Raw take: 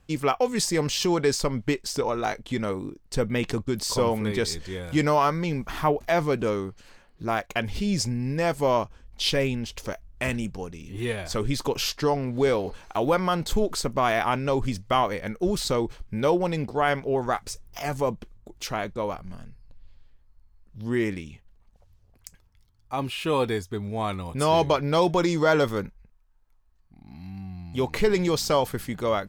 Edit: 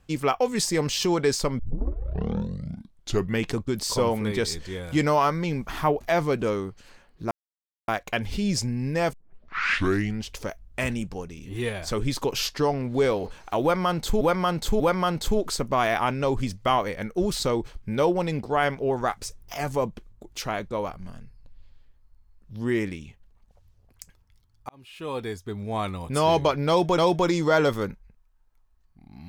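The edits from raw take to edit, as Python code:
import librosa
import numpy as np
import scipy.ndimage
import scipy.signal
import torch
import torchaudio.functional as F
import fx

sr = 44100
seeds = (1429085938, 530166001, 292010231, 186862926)

y = fx.edit(x, sr, fx.tape_start(start_s=1.59, length_s=1.91),
    fx.insert_silence(at_s=7.31, length_s=0.57),
    fx.tape_start(start_s=8.56, length_s=1.13),
    fx.repeat(start_s=13.05, length_s=0.59, count=3),
    fx.fade_in_span(start_s=22.94, length_s=1.08),
    fx.repeat(start_s=24.93, length_s=0.3, count=2), tone=tone)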